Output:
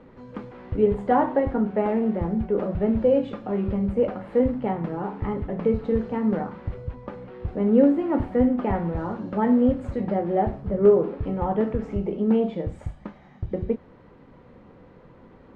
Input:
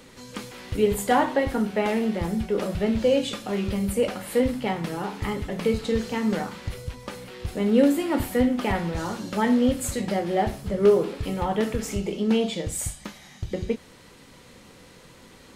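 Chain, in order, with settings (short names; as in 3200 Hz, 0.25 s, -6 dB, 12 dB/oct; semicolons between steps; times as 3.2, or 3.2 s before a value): LPF 1100 Hz 12 dB/oct; gain +1.5 dB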